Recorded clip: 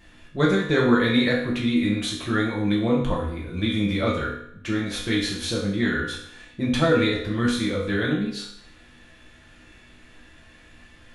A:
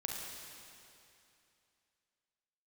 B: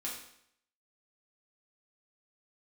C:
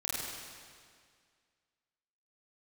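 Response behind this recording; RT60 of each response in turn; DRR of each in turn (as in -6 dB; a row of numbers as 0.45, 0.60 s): B; 2.7, 0.70, 2.0 s; -1.5, -5.0, -7.5 dB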